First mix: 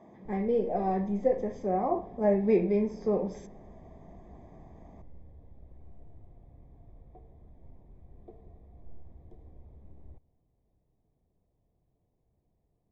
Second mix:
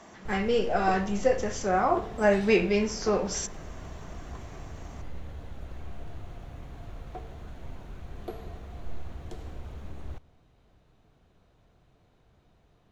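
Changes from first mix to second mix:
background +11.0 dB
master: remove moving average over 31 samples

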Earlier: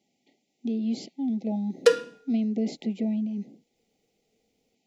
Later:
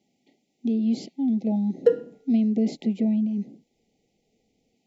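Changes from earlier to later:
background: add moving average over 37 samples
master: add low-shelf EQ 410 Hz +6 dB

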